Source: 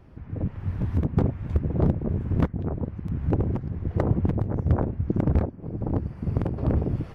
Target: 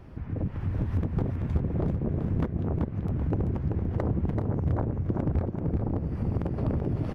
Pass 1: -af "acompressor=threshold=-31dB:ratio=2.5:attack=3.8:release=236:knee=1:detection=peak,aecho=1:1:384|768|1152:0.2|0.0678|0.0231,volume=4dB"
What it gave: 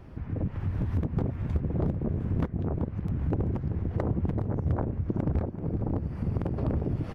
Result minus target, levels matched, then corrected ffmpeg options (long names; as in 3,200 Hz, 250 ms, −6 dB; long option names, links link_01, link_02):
echo-to-direct −8.5 dB
-af "acompressor=threshold=-31dB:ratio=2.5:attack=3.8:release=236:knee=1:detection=peak,aecho=1:1:384|768|1152|1536:0.531|0.181|0.0614|0.0209,volume=4dB"